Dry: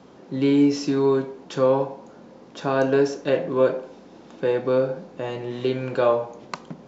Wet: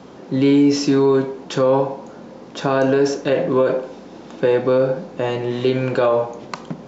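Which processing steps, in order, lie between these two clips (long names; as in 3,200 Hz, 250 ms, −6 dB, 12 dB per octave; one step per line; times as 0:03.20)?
brickwall limiter −16 dBFS, peak gain reduction 8.5 dB
level +8 dB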